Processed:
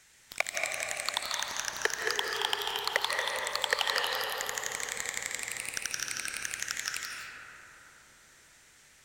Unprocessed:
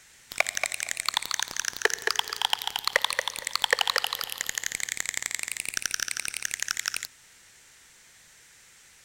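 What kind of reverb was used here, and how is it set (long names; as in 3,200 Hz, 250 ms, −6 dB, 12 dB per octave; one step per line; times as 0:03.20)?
comb and all-pass reverb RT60 4.6 s, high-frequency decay 0.25×, pre-delay 120 ms, DRR −0.5 dB
level −6 dB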